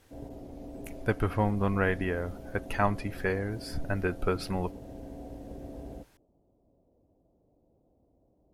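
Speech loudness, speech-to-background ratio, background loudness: -31.0 LUFS, 13.5 dB, -44.5 LUFS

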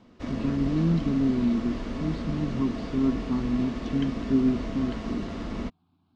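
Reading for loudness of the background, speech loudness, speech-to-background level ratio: -34.0 LUFS, -28.0 LUFS, 6.0 dB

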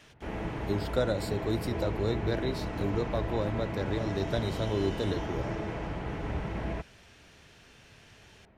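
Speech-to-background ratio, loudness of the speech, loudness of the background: 3.0 dB, -33.0 LUFS, -36.0 LUFS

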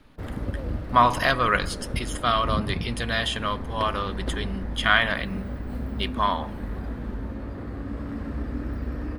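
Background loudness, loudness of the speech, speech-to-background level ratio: -33.5 LUFS, -25.0 LUFS, 8.5 dB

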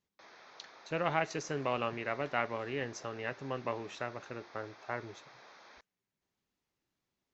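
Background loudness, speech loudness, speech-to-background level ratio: -55.5 LUFS, -37.0 LUFS, 18.5 dB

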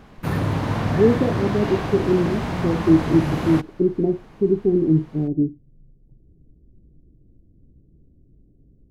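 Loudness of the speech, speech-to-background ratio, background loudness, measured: -21.0 LUFS, 4.0 dB, -25.0 LUFS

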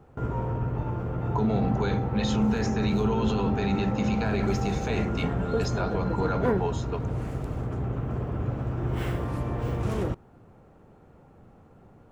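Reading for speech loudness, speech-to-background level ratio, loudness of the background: -29.5 LUFS, 0.5 dB, -30.0 LUFS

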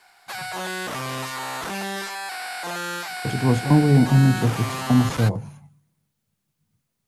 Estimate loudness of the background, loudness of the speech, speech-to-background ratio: -29.5 LUFS, -19.5 LUFS, 10.0 dB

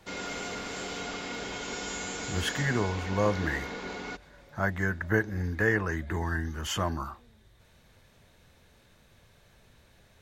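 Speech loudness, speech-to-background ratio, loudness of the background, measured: -30.5 LUFS, 6.0 dB, -36.5 LUFS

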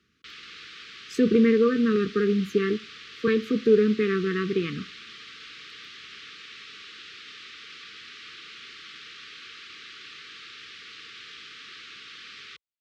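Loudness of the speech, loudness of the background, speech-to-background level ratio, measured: -23.5 LUFS, -42.0 LUFS, 18.5 dB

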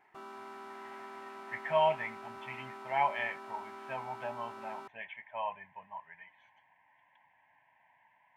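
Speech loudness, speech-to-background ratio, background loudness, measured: -36.5 LUFS, 11.0 dB, -47.5 LUFS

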